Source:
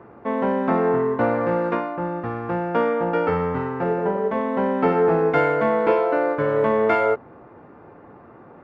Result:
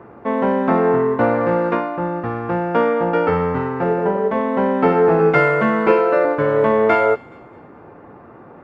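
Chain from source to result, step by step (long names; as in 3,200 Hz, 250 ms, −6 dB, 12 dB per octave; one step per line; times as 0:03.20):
0:05.19–0:06.25: comb filter 5.2 ms, depth 82%
on a send: delay with a high-pass on its return 212 ms, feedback 41%, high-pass 2,700 Hz, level −17 dB
on the sum: level +4 dB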